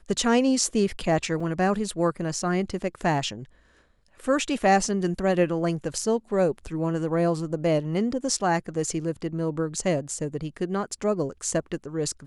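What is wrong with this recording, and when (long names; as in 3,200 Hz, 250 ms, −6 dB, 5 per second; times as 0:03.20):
0:01.40: drop-out 4.3 ms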